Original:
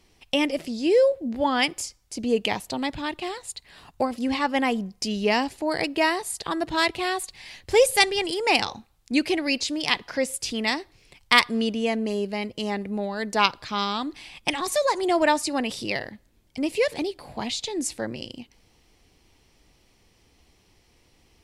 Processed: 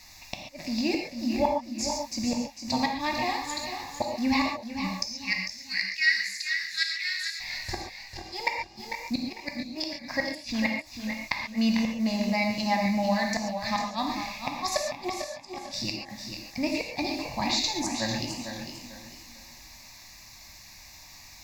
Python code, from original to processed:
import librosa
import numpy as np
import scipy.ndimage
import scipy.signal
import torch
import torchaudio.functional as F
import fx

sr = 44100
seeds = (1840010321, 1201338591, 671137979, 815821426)

y = fx.high_shelf(x, sr, hz=4300.0, db=5.5)
y = fx.dmg_noise_colour(y, sr, seeds[0], colour='blue', level_db=-43.0)
y = fx.cheby_ripple_highpass(y, sr, hz=1400.0, ripple_db=6, at=(5.11, 7.39), fade=0.02)
y = fx.gate_flip(y, sr, shuts_db=-13.0, range_db=-41)
y = fx.air_absorb(y, sr, metres=56.0)
y = fx.fixed_phaser(y, sr, hz=2100.0, stages=8)
y = y + 10.0 ** (-11.5 / 20.0) * np.pad(y, (int(471 * sr / 1000.0), 0))[:len(y)]
y = fx.rev_gated(y, sr, seeds[1], gate_ms=160, shape='flat', drr_db=1.0)
y = fx.echo_warbled(y, sr, ms=448, feedback_pct=30, rate_hz=2.8, cents=53, wet_db=-9.0)
y = F.gain(torch.from_numpy(y), 3.5).numpy()